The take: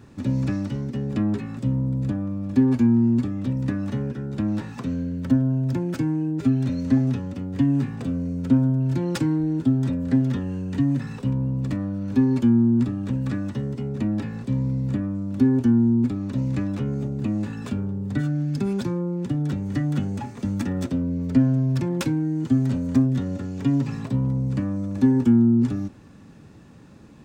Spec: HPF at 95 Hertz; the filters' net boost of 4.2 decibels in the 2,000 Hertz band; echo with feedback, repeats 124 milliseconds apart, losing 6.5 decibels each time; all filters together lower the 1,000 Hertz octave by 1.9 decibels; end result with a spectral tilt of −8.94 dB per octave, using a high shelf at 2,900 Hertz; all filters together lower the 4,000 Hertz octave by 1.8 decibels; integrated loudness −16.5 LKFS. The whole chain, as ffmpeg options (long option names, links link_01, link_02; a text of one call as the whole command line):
ffmpeg -i in.wav -af "highpass=95,equalizer=frequency=1000:width_type=o:gain=-4.5,equalizer=frequency=2000:width_type=o:gain=7,highshelf=frequency=2900:gain=4.5,equalizer=frequency=4000:width_type=o:gain=-8.5,aecho=1:1:124|248|372|496|620|744:0.473|0.222|0.105|0.0491|0.0231|0.0109,volume=6.5dB" out.wav